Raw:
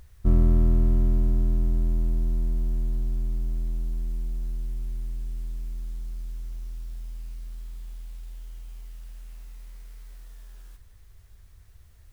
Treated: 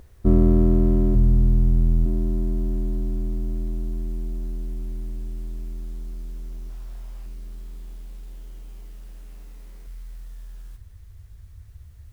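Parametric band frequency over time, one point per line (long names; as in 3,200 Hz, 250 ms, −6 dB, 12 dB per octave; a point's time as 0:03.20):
parametric band +11.5 dB 2.4 octaves
360 Hz
from 0:01.15 110 Hz
from 0:02.06 320 Hz
from 0:06.70 750 Hz
from 0:07.26 310 Hz
from 0:09.87 92 Hz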